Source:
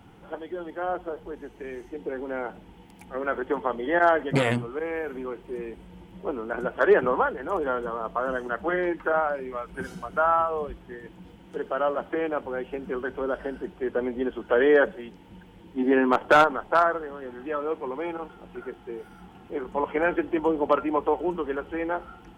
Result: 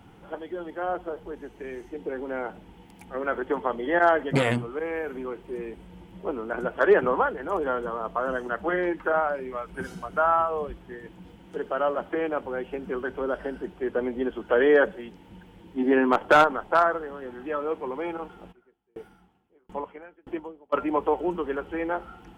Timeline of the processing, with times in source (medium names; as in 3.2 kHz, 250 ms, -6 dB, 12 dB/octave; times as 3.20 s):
18.51–20.72 s: sawtooth tremolo in dB decaying 1 Hz -> 2.3 Hz, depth 38 dB